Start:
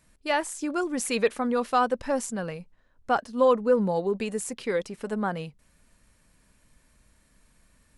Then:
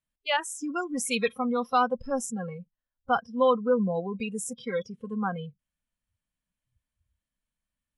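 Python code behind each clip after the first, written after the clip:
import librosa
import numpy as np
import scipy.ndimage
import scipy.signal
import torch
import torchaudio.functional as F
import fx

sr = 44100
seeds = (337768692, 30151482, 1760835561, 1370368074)

y = fx.noise_reduce_blind(x, sr, reduce_db=27)
y = fx.graphic_eq_31(y, sr, hz=(400, 3150, 5000), db=(-11, 9, -4))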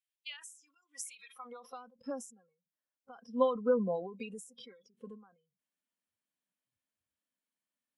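y = fx.filter_sweep_highpass(x, sr, from_hz=2500.0, to_hz=290.0, start_s=1.23, end_s=1.8, q=1.3)
y = fx.end_taper(y, sr, db_per_s=110.0)
y = y * librosa.db_to_amplitude(-4.0)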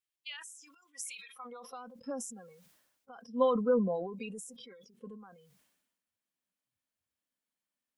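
y = fx.sustainer(x, sr, db_per_s=52.0)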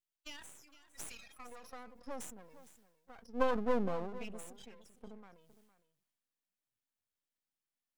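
y = np.maximum(x, 0.0)
y = y + 10.0 ** (-16.0 / 20.0) * np.pad(y, (int(460 * sr / 1000.0), 0))[:len(y)]
y = y * librosa.db_to_amplitude(-1.0)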